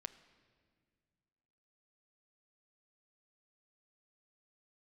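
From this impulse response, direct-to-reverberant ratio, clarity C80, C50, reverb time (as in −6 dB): 11.5 dB, 15.5 dB, 14.5 dB, 2.0 s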